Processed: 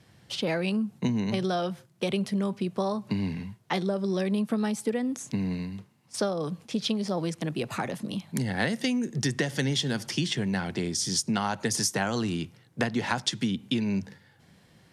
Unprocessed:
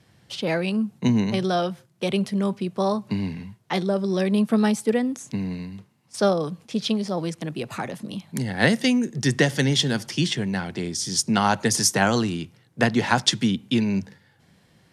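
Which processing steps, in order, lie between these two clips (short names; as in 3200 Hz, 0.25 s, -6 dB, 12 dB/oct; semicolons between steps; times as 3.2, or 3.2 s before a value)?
compressor, threshold -24 dBFS, peak gain reduction 10.5 dB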